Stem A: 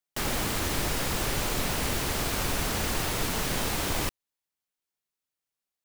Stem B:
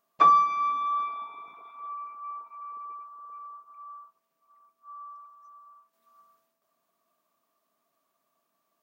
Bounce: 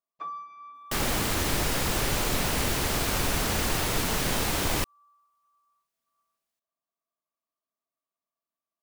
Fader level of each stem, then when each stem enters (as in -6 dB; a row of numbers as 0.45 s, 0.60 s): +2.0 dB, -19.0 dB; 0.75 s, 0.00 s